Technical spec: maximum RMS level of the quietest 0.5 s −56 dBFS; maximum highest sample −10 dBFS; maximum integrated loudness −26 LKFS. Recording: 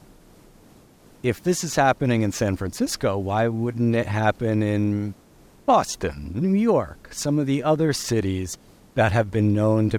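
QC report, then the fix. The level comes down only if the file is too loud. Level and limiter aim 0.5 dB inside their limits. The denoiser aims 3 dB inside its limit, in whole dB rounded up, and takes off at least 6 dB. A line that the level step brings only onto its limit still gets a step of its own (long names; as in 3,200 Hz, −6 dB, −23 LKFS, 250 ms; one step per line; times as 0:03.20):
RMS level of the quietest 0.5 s −52 dBFS: out of spec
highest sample −7.0 dBFS: out of spec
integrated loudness −22.5 LKFS: out of spec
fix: broadband denoise 6 dB, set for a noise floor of −52 dBFS
level −4 dB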